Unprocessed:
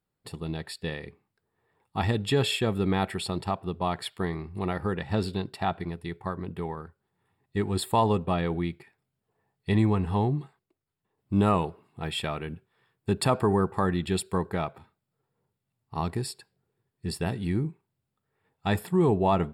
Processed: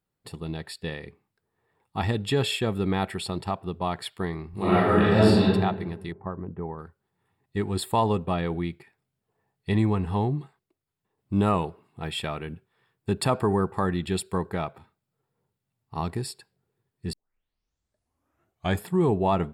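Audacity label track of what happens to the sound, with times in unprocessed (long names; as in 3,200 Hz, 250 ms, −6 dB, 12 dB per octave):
4.500000	5.440000	thrown reverb, RT60 1.2 s, DRR −10.5 dB
6.120000	6.790000	Bessel low-pass filter 1,100 Hz, order 4
17.130000	17.130000	tape start 1.70 s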